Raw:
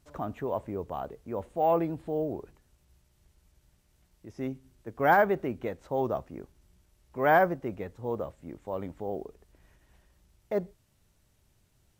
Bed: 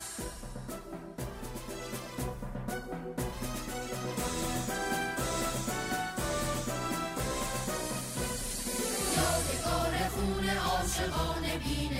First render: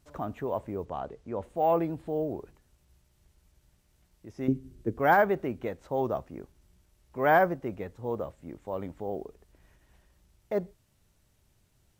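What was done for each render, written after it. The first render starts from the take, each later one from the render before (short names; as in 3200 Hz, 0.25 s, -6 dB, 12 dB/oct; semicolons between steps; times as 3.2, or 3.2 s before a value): 0.85–1.43 LPF 7200 Hz; 4.48–4.99 resonant low shelf 530 Hz +10 dB, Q 1.5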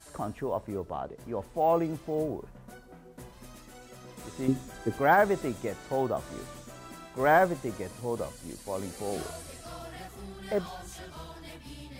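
add bed -12 dB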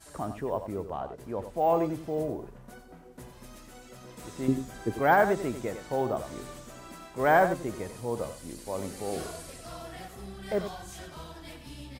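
echo 92 ms -10 dB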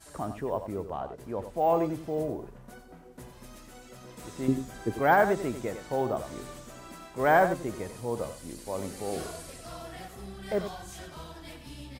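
nothing audible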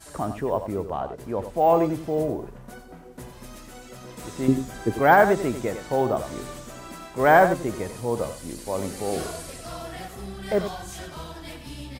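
gain +6 dB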